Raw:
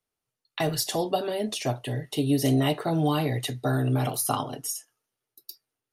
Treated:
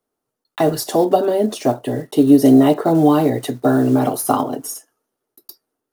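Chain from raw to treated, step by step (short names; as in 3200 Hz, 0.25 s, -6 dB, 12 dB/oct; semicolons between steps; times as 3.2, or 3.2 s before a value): block floating point 5-bit; EQ curve 130 Hz 0 dB, 260 Hz +13 dB, 620 Hz +10 dB, 1400 Hz +6 dB, 2400 Hz -3 dB, 14000 Hz +3 dB; gain +1.5 dB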